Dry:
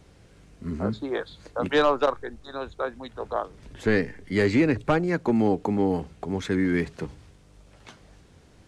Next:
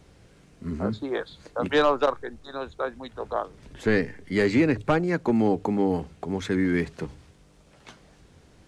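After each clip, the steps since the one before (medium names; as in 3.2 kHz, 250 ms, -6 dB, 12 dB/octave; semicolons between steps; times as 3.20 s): hum notches 50/100 Hz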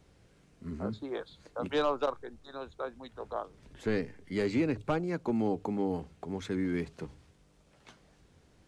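dynamic bell 1.8 kHz, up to -6 dB, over -46 dBFS, Q 3.3; trim -8 dB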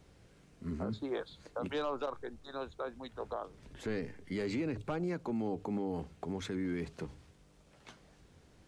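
peak limiter -29 dBFS, peak gain reduction 8.5 dB; trim +1 dB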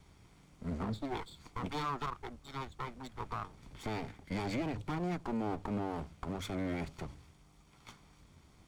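comb filter that takes the minimum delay 0.88 ms; trim +1.5 dB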